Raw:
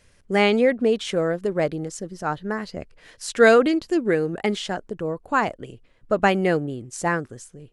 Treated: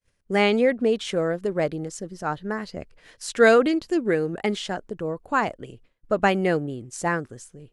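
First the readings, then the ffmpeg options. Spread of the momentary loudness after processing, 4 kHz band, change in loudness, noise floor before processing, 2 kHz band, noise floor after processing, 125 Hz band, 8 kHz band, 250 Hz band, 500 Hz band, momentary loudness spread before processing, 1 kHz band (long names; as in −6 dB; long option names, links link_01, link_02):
14 LU, −1.5 dB, −1.5 dB, −57 dBFS, −1.5 dB, −65 dBFS, −1.5 dB, −1.5 dB, −1.5 dB, −1.5 dB, 15 LU, −1.5 dB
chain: -af "agate=range=-33dB:threshold=-47dB:ratio=3:detection=peak,volume=-1.5dB"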